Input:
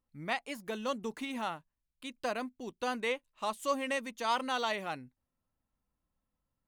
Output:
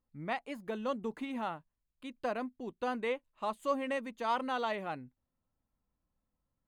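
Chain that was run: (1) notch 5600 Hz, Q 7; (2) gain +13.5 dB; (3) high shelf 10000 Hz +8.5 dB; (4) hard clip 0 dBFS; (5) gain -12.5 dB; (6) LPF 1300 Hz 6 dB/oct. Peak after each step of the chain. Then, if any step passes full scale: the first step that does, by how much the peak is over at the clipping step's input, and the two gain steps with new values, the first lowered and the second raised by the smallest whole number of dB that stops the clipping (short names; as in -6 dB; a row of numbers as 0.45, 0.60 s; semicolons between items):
-18.5, -5.0, -4.5, -4.5, -17.0, -20.0 dBFS; no overload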